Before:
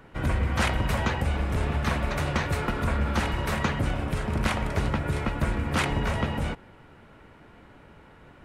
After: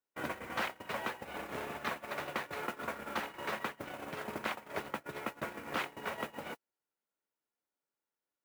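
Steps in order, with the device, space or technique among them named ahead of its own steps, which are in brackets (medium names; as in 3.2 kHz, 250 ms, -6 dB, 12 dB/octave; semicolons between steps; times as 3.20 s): baby monitor (band-pass 350–4000 Hz; compression 8:1, threshold -36 dBFS, peak gain reduction 13 dB; white noise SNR 15 dB; gate -38 dBFS, range -47 dB); trim +4 dB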